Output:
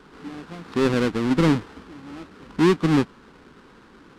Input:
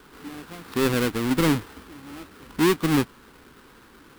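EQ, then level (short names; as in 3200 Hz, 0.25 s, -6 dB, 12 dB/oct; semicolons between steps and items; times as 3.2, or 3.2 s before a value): tone controls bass -4 dB, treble +9 dB; tape spacing loss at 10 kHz 25 dB; bell 180 Hz +6 dB 0.58 oct; +3.5 dB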